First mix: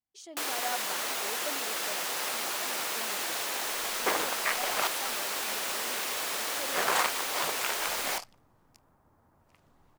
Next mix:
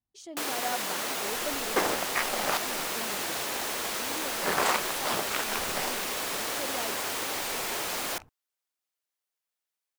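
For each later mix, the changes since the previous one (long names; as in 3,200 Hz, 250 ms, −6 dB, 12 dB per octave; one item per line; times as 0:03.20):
second sound: entry −2.30 s
master: add low-shelf EQ 320 Hz +11.5 dB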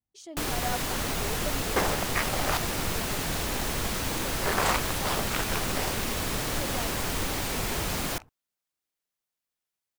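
first sound: remove high-pass filter 410 Hz 12 dB per octave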